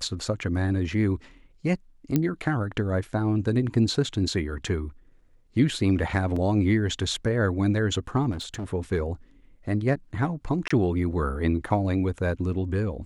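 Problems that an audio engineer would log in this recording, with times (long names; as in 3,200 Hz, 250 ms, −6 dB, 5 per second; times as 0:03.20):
0:02.16: click −10 dBFS
0:06.36: drop-out 3.8 ms
0:08.31–0:08.73: clipping −29 dBFS
0:10.68–0:10.71: drop-out 25 ms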